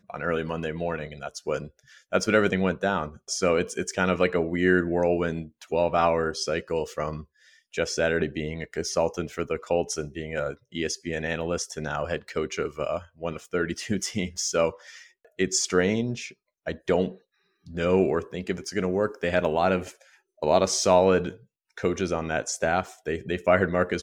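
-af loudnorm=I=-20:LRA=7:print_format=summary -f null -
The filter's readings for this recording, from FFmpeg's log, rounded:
Input Integrated:    -26.5 LUFS
Input True Peak:      -5.3 dBTP
Input LRA:             5.0 LU
Input Threshold:     -36.9 LUFS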